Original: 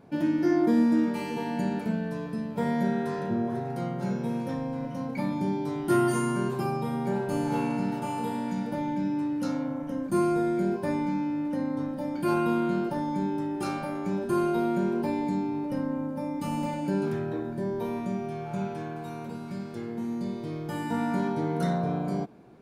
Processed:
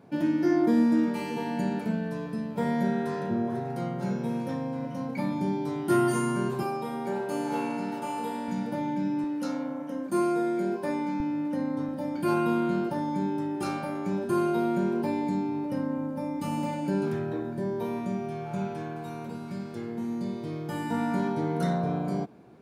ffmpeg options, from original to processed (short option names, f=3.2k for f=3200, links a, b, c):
-af "asetnsamples=n=441:p=0,asendcmd='6.63 highpass f 270;8.48 highpass f 100;9.24 highpass f 240;11.2 highpass f 95;11.88 highpass f 45',highpass=86"